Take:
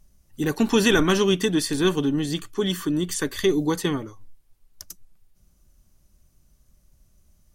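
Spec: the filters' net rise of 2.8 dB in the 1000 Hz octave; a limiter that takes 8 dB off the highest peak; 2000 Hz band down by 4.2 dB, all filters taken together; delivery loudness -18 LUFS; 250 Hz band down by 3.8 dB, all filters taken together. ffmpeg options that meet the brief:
-af "equalizer=f=250:t=o:g=-5.5,equalizer=f=1k:t=o:g=6,equalizer=f=2k:t=o:g=-8.5,volume=9.5dB,alimiter=limit=-7dB:level=0:latency=1"

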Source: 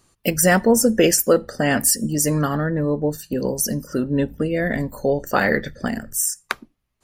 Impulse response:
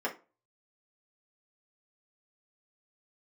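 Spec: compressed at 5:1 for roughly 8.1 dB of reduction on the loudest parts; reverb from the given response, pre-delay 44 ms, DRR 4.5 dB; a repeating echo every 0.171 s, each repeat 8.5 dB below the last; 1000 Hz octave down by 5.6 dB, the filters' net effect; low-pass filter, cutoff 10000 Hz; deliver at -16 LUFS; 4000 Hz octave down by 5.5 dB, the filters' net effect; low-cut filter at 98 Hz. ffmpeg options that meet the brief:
-filter_complex "[0:a]highpass=98,lowpass=10k,equalizer=f=1k:t=o:g=-8.5,equalizer=f=4k:t=o:g=-8.5,acompressor=threshold=-21dB:ratio=5,aecho=1:1:171|342|513|684:0.376|0.143|0.0543|0.0206,asplit=2[a][b];[1:a]atrim=start_sample=2205,adelay=44[c];[b][c]afir=irnorm=-1:irlink=0,volume=-11.5dB[d];[a][d]amix=inputs=2:normalize=0,volume=8.5dB"

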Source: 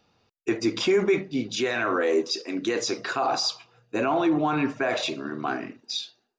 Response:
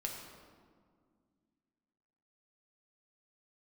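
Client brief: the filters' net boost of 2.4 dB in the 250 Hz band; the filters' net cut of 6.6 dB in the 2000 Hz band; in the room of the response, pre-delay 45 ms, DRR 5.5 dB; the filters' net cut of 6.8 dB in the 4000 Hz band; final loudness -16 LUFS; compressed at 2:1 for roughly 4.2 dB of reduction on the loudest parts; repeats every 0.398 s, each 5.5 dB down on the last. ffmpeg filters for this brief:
-filter_complex "[0:a]equalizer=f=250:t=o:g=3.5,equalizer=f=2k:t=o:g=-7.5,equalizer=f=4k:t=o:g=-7,acompressor=threshold=-24dB:ratio=2,aecho=1:1:398|796|1194|1592|1990|2388|2786:0.531|0.281|0.149|0.079|0.0419|0.0222|0.0118,asplit=2[a][b];[1:a]atrim=start_sample=2205,adelay=45[c];[b][c]afir=irnorm=-1:irlink=0,volume=-6dB[d];[a][d]amix=inputs=2:normalize=0,volume=10dB"

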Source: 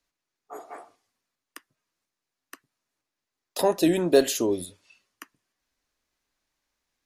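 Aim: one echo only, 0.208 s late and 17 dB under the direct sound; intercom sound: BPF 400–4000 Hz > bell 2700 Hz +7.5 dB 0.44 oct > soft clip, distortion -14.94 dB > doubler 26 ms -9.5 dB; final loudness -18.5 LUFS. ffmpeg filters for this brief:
-filter_complex "[0:a]highpass=400,lowpass=4k,equalizer=f=2.7k:t=o:w=0.44:g=7.5,aecho=1:1:208:0.141,asoftclip=threshold=-15dB,asplit=2[a][b];[b]adelay=26,volume=-9.5dB[c];[a][c]amix=inputs=2:normalize=0,volume=10dB"

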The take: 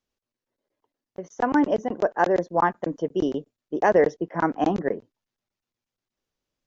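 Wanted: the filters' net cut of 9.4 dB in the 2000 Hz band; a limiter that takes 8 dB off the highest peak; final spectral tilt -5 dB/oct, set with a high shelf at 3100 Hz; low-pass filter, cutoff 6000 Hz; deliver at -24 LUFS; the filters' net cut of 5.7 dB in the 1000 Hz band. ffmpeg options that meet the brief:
-af "lowpass=6k,equalizer=f=1k:t=o:g=-5.5,equalizer=f=2k:t=o:g=-8,highshelf=f=3.1k:g=-8,volume=5.5dB,alimiter=limit=-12dB:level=0:latency=1"

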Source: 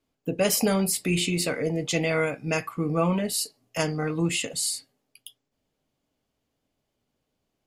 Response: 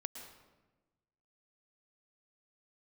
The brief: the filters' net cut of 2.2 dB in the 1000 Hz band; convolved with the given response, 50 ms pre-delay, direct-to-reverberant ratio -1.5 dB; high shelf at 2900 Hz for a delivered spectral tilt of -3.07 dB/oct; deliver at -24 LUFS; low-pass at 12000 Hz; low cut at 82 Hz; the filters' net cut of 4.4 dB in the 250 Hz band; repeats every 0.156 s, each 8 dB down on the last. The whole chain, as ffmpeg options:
-filter_complex "[0:a]highpass=82,lowpass=12k,equalizer=f=250:t=o:g=-7,equalizer=f=1k:t=o:g=-3.5,highshelf=f=2.9k:g=6.5,aecho=1:1:156|312|468|624|780:0.398|0.159|0.0637|0.0255|0.0102,asplit=2[a][b];[1:a]atrim=start_sample=2205,adelay=50[c];[b][c]afir=irnorm=-1:irlink=0,volume=3.5dB[d];[a][d]amix=inputs=2:normalize=0,volume=-4dB"

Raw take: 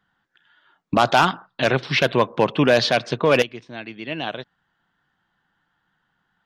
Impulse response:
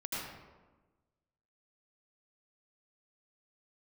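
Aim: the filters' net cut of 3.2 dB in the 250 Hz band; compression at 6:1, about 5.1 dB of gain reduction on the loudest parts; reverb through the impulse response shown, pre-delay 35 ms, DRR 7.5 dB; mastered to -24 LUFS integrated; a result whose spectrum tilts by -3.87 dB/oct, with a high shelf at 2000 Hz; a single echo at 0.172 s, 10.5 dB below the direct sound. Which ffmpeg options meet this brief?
-filter_complex "[0:a]equalizer=f=250:t=o:g=-4,highshelf=f=2k:g=-7,acompressor=threshold=-18dB:ratio=6,aecho=1:1:172:0.299,asplit=2[a][b];[1:a]atrim=start_sample=2205,adelay=35[c];[b][c]afir=irnorm=-1:irlink=0,volume=-10.5dB[d];[a][d]amix=inputs=2:normalize=0,volume=1dB"

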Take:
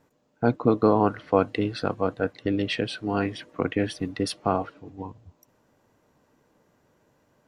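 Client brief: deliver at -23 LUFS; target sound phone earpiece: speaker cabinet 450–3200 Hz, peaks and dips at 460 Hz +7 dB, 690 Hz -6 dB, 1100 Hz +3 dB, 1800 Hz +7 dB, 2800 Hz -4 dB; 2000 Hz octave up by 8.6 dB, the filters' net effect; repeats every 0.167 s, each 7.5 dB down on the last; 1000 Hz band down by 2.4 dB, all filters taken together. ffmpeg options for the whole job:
-af "highpass=450,equalizer=f=460:t=q:w=4:g=7,equalizer=f=690:t=q:w=4:g=-6,equalizer=f=1.1k:t=q:w=4:g=3,equalizer=f=1.8k:t=q:w=4:g=7,equalizer=f=2.8k:t=q:w=4:g=-4,lowpass=f=3.2k:w=0.5412,lowpass=f=3.2k:w=1.3066,equalizer=f=1k:t=o:g=-5.5,equalizer=f=2k:t=o:g=8.5,aecho=1:1:167|334|501|668|835:0.422|0.177|0.0744|0.0312|0.0131,volume=3dB"

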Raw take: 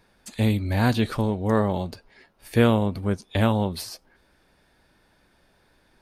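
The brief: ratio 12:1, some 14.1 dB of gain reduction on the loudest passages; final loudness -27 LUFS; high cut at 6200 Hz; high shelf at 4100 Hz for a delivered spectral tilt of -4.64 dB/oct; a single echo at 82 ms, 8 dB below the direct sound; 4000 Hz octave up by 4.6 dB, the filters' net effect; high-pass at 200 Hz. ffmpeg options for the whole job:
-af "highpass=200,lowpass=6.2k,equalizer=f=4k:t=o:g=3.5,highshelf=f=4.1k:g=5,acompressor=threshold=-27dB:ratio=12,aecho=1:1:82:0.398,volume=6.5dB"

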